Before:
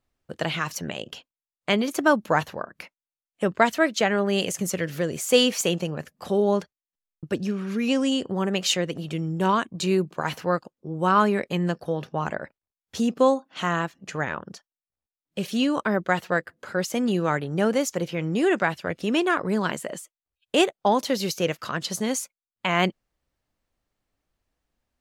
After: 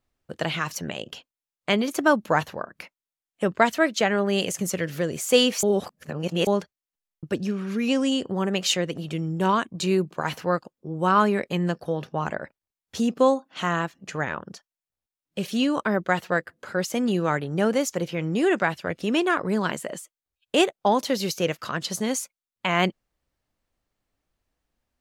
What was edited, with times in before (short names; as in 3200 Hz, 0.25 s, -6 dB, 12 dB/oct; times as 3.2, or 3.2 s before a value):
5.63–6.47 reverse